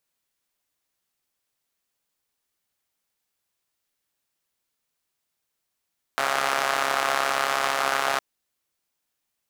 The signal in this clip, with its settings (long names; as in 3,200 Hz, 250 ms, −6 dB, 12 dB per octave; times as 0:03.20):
pulse-train model of a four-cylinder engine, steady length 2.01 s, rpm 4,100, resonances 750/1,200 Hz